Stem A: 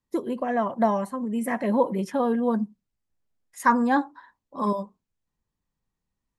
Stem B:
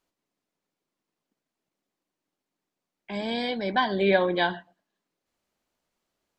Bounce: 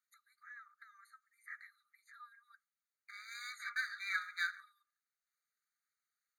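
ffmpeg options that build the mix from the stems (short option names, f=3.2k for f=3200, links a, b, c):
-filter_complex "[0:a]acrossover=split=4800[a][b];[b]acompressor=threshold=-56dB:ratio=4:attack=1:release=60[c];[a][c]amix=inputs=2:normalize=0,equalizer=f=380:w=2.7:g=10,acompressor=threshold=-31dB:ratio=6,volume=-5.5dB[d];[1:a]aeval=exprs='if(lt(val(0),0),0.251*val(0),val(0))':c=same,equalizer=f=3.2k:w=1.3:g=-7.5,volume=-2dB[e];[d][e]amix=inputs=2:normalize=0,afftfilt=real='re*eq(mod(floor(b*sr/1024/1200),2),1)':imag='im*eq(mod(floor(b*sr/1024/1200),2),1)':win_size=1024:overlap=0.75"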